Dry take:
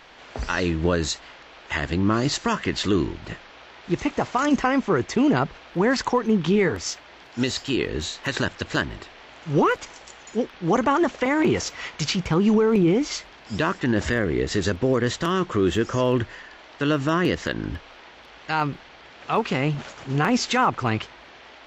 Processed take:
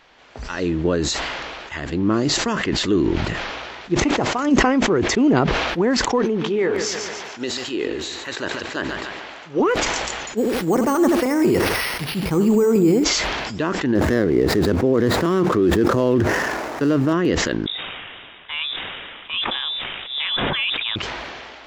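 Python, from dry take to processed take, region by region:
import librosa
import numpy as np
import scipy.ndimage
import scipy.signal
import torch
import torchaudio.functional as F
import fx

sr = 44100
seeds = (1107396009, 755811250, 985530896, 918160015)

y = fx.chain(x, sr, fx.bass_treble(bass_db=-13, treble_db=-3),
    fx.echo_feedback(ms=143, feedback_pct=47, wet_db=-12.5), at=(6.25, 9.6))
y = fx.chain(y, sr, fx.echo_feedback(ms=80, feedback_pct=25, wet_db=-11),
    fx.resample_bad(factor=6, down='none', up='hold'), at=(10.37, 13.04))
y = fx.chain(y, sr, fx.median_filter(points=15),
    fx.highpass(hz=71.0, slope=12),
    fx.env_flatten(amount_pct=70), at=(13.95, 17.13))
y = fx.chain(y, sr, fx.freq_invert(carrier_hz=3700),
    fx.sustainer(db_per_s=29.0), at=(17.66, 20.96))
y = fx.dynamic_eq(y, sr, hz=330.0, q=0.73, threshold_db=-33.0, ratio=4.0, max_db=8)
y = fx.sustainer(y, sr, db_per_s=25.0)
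y = y * 10.0 ** (-4.5 / 20.0)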